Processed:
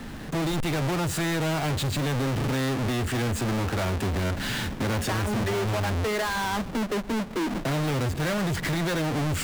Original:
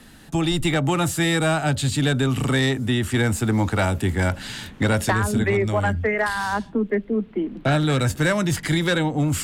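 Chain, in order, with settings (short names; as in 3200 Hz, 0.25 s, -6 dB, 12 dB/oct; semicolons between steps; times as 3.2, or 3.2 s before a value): half-waves squared off; high shelf 4800 Hz -7.5 dB; in parallel at -3 dB: limiter -23 dBFS, peak gain reduction 28.5 dB; on the sum: compressor, threshold -19 dBFS, peak gain reduction 7 dB; soft clip -24.5 dBFS, distortion -13 dB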